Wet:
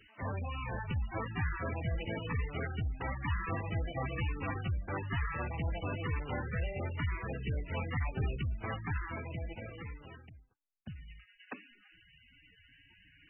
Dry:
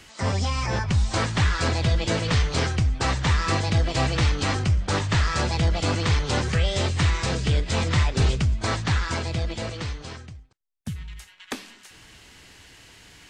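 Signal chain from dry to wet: high shelf 2800 Hz +7.5 dB; resonator 290 Hz, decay 0.46 s, harmonics all, mix 40%; gain -8.5 dB; MP3 8 kbps 24000 Hz

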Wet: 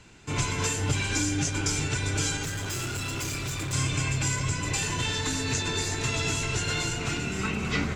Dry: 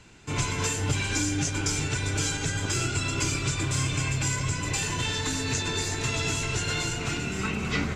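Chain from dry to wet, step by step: 2.43–3.73 hard clip -29.5 dBFS, distortion -14 dB

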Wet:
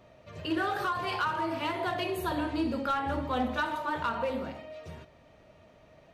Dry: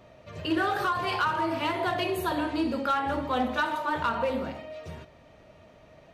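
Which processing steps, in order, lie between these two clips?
2.23–3.91 low shelf 130 Hz +8.5 dB; gain -3.5 dB

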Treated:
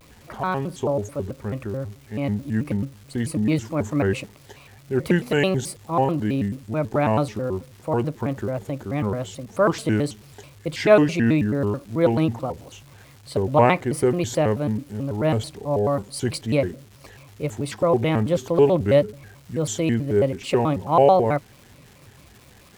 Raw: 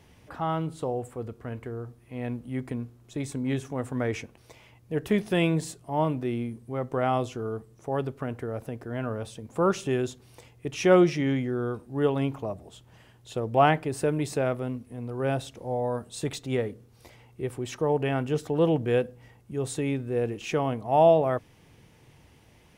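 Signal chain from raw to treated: ripple EQ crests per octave 1, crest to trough 8 dB; crackle 570/s -45 dBFS; shaped vibrato square 4.6 Hz, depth 250 cents; gain +4.5 dB

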